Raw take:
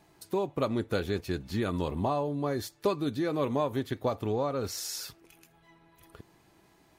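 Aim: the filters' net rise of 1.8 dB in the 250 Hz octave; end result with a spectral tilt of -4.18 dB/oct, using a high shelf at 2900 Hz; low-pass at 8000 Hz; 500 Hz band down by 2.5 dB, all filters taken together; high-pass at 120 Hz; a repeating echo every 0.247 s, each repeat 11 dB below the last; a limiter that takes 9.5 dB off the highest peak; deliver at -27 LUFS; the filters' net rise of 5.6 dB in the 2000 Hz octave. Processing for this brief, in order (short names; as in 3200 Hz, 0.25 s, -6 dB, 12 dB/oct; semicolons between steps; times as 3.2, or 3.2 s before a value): HPF 120 Hz; LPF 8000 Hz; bell 250 Hz +4 dB; bell 500 Hz -5 dB; bell 2000 Hz +4.5 dB; high shelf 2900 Hz +8.5 dB; limiter -22 dBFS; feedback echo 0.247 s, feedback 28%, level -11 dB; gain +6 dB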